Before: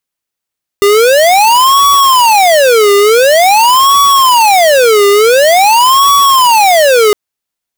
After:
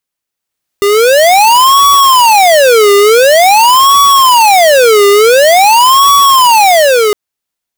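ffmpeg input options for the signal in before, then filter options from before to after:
-f lavfi -i "aevalsrc='0.501*(2*lt(mod((766*t-364/(2*PI*0.47)*sin(2*PI*0.47*t)),1),0.5)-1)':d=6.31:s=44100"
-af "alimiter=limit=-17dB:level=0:latency=1:release=418,dynaudnorm=f=120:g=13:m=12.5dB"

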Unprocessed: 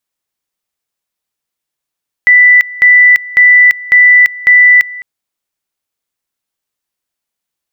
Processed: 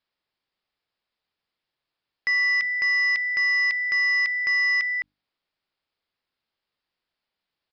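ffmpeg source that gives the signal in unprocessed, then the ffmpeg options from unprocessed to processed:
-f lavfi -i "aevalsrc='pow(10,(-1.5-20.5*gte(mod(t,0.55),0.34))/20)*sin(2*PI*1980*t)':d=2.75:s=44100"
-af "bandreject=f=50:t=h:w=6,bandreject=f=100:t=h:w=6,bandreject=f=150:t=h:w=6,bandreject=f=200:t=h:w=6,bandreject=f=250:t=h:w=6,bandreject=f=300:t=h:w=6,alimiter=limit=-11.5dB:level=0:latency=1:release=13,aresample=11025,asoftclip=type=tanh:threshold=-20dB,aresample=44100"

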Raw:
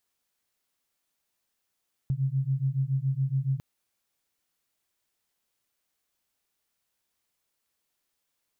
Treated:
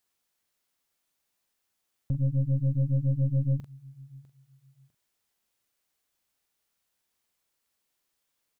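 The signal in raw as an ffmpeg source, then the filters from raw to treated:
-f lavfi -i "aevalsrc='0.0422*(sin(2*PI*131*t)+sin(2*PI*138.1*t))':d=1.5:s=44100"
-filter_complex "[0:a]asplit=2[a][b];[b]adelay=44,volume=-10dB[c];[a][c]amix=inputs=2:normalize=0,aecho=1:1:651|1302:0.0794|0.0207,aeval=exprs='0.106*(cos(1*acos(clip(val(0)/0.106,-1,1)))-cos(1*PI/2))+0.015*(cos(4*acos(clip(val(0)/0.106,-1,1)))-cos(4*PI/2))':c=same"

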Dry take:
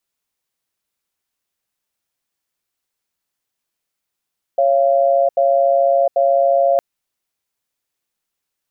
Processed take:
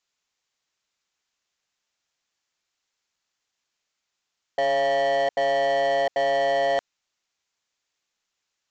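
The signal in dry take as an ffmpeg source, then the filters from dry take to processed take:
-f lavfi -i "aevalsrc='0.2*(sin(2*PI*553*t)+sin(2*PI*687*t))*clip(min(mod(t,0.79),0.71-mod(t,0.79))/0.005,0,1)':d=2.21:s=44100"
-af "tiltshelf=f=700:g=-4,aresample=16000,volume=20.5dB,asoftclip=hard,volume=-20.5dB,aresample=44100"

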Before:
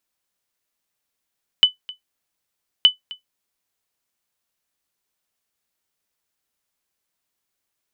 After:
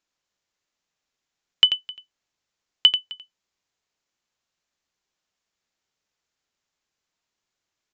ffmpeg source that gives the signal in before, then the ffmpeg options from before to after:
-f lavfi -i "aevalsrc='0.708*(sin(2*PI*3000*mod(t,1.22))*exp(-6.91*mod(t,1.22)/0.13)+0.0841*sin(2*PI*3000*max(mod(t,1.22)-0.26,0))*exp(-6.91*max(mod(t,1.22)-0.26,0)/0.13))':d=2.44:s=44100"
-filter_complex "[0:a]asplit=2[a][b];[b]aecho=0:1:88:0.335[c];[a][c]amix=inputs=2:normalize=0,aresample=16000,aresample=44100"

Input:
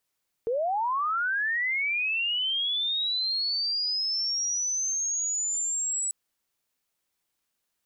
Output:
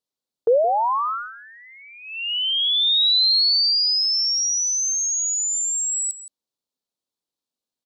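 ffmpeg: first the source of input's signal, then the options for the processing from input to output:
-f lavfi -i "aevalsrc='pow(10,(-24-2*t/5.64)/20)*sin(2*PI*(440*t+7460*t*t/(2*5.64)))':d=5.64:s=44100"
-af "equalizer=f=125:t=o:w=1:g=5,equalizer=f=250:t=o:w=1:g=11,equalizer=f=500:t=o:w=1:g=9,equalizer=f=1k:t=o:w=1:g=5,equalizer=f=2k:t=o:w=1:g=-7,equalizer=f=4k:t=o:w=1:g=11,equalizer=f=8k:t=o:w=1:g=3,agate=range=-15dB:threshold=-26dB:ratio=16:detection=peak,aecho=1:1:169:0.188"

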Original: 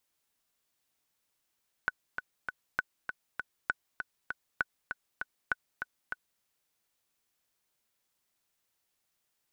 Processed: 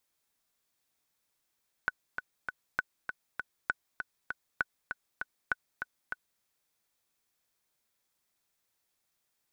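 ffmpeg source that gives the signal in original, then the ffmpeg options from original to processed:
-f lavfi -i "aevalsrc='pow(10,(-14.5-7*gte(mod(t,3*60/198),60/198))/20)*sin(2*PI*1490*mod(t,60/198))*exp(-6.91*mod(t,60/198)/0.03)':d=4.54:s=44100"
-af "bandreject=f=2.9k:w=16"

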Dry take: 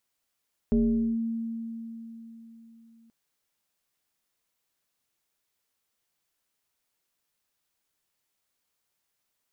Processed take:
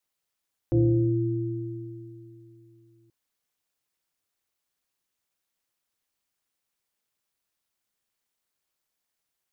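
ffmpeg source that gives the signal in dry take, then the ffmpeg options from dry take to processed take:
-f lavfi -i "aevalsrc='0.119*pow(10,-3*t/3.87)*sin(2*PI*228*t+0.77*clip(1-t/0.46,0,1)*sin(2*PI*0.81*228*t))':d=2.38:s=44100"
-af "adynamicequalizer=threshold=0.0126:dfrequency=240:dqfactor=2.4:tfrequency=240:tqfactor=2.4:attack=5:release=100:ratio=0.375:range=3.5:mode=boostabove:tftype=bell,aeval=exprs='val(0)*sin(2*PI*110*n/s)':c=same"

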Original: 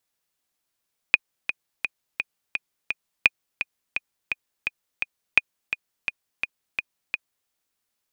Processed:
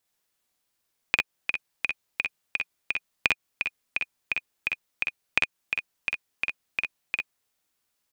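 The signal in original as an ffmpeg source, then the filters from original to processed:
-f lavfi -i "aevalsrc='pow(10,(-1-10.5*gte(mod(t,6*60/170),60/170))/20)*sin(2*PI*2470*mod(t,60/170))*exp(-6.91*mod(t,60/170)/0.03)':d=6.35:s=44100"
-af "acompressor=threshold=-20dB:ratio=6,aecho=1:1:48|60:0.668|0.531"

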